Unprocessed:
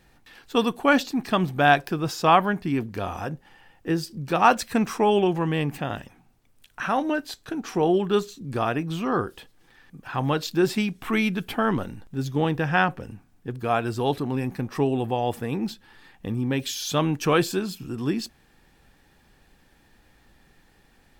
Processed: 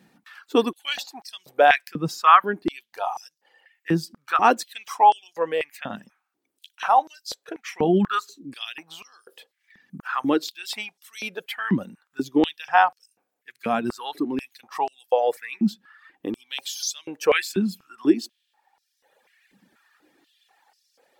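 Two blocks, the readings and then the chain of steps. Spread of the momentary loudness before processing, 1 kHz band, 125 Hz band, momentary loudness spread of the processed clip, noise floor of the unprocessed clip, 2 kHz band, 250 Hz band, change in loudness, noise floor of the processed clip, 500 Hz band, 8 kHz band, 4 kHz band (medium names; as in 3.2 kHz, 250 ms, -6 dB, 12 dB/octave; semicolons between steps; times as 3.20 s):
13 LU, +3.5 dB, -7.5 dB, 18 LU, -60 dBFS, 0.0 dB, -1.5 dB, +1.0 dB, -78 dBFS, -0.5 dB, +1.0 dB, +0.5 dB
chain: reverb removal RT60 1.5 s; step-sequenced high-pass 4.1 Hz 200–5200 Hz; trim -1 dB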